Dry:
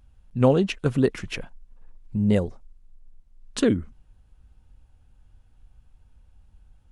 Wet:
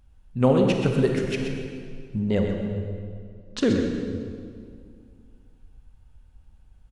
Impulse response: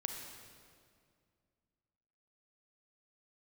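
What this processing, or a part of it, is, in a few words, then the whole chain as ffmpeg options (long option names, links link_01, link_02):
stairwell: -filter_complex "[0:a]asettb=1/sr,asplit=3[link_01][link_02][link_03];[link_01]atrim=end=2.194[link_04];[link_02]atrim=start=2.19:end=3.61,asetpts=PTS-STARTPTS,afade=type=in:duration=0.004:curve=qsin,afade=type=out:start_time=1.416:duration=0.004:curve=qsin,lowpass=frequency=6400:width=0.5412,lowpass=frequency=6400:width=1.3066[link_05];[link_03]atrim=start=3.606[link_06];[link_04][link_05]acrossfade=duration=0.004:curve1=hsin:curve2=qsin[link_07];[link_07][link_06]acrossfade=duration=0.004:curve1=qsin:curve2=hsin,aecho=1:1:128:0.398[link_08];[1:a]atrim=start_sample=2205[link_09];[link_08][link_09]afir=irnorm=-1:irlink=0"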